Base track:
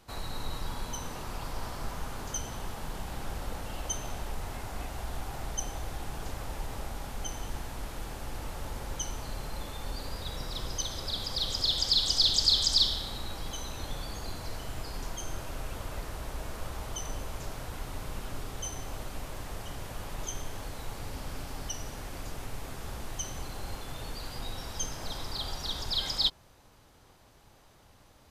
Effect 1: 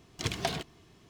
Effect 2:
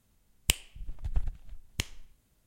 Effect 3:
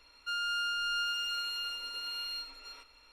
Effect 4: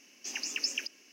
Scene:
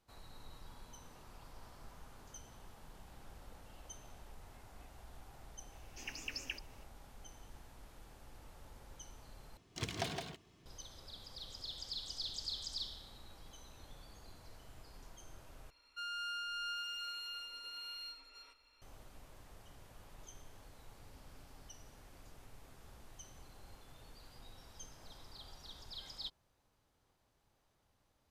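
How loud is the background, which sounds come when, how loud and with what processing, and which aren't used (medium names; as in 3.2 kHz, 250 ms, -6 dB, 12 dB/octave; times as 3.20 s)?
base track -18 dB
5.72 s: add 4 -6 dB + peaking EQ 6 kHz -9 dB 1.1 oct
9.57 s: replace with 1 -8 dB + delay 165 ms -5 dB
15.70 s: replace with 3 -8.5 dB
not used: 2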